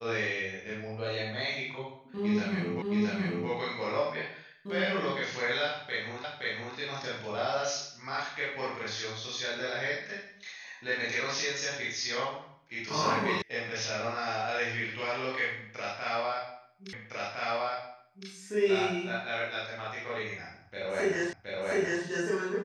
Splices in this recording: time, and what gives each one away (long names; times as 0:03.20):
0:02.82: the same again, the last 0.67 s
0:06.24: the same again, the last 0.52 s
0:13.42: cut off before it has died away
0:16.93: the same again, the last 1.36 s
0:21.33: the same again, the last 0.72 s